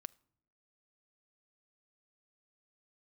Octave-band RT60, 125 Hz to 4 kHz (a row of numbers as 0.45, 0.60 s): 0.80, 0.90, 0.90, 0.60, 0.65, 0.50 s